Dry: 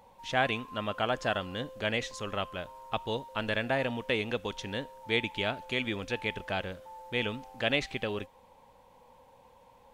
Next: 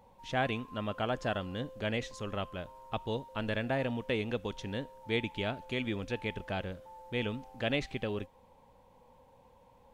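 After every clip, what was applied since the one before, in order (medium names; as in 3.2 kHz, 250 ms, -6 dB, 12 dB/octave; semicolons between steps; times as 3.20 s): bass shelf 490 Hz +8 dB; trim -6 dB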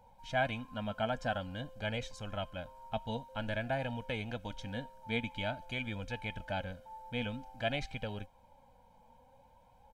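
comb 1.3 ms, depth 81%; flange 0.5 Hz, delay 2 ms, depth 2.7 ms, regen +60%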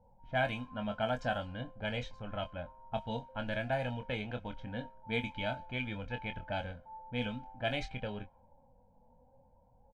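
level-controlled noise filter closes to 520 Hz, open at -30 dBFS; doubling 24 ms -8 dB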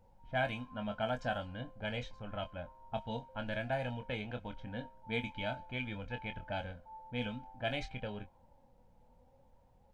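added noise brown -66 dBFS; trim -2 dB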